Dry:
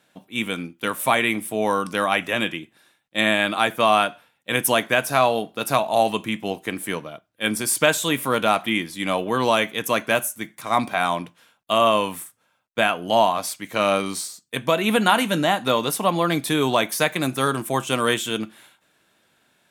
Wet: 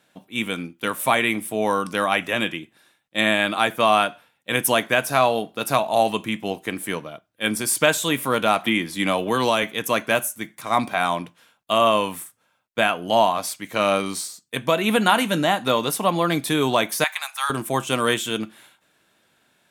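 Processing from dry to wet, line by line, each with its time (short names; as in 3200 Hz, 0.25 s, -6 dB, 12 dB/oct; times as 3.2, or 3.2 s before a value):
8.65–9.63 three-band squash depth 70%
17.04–17.5 elliptic high-pass 820 Hz, stop band 60 dB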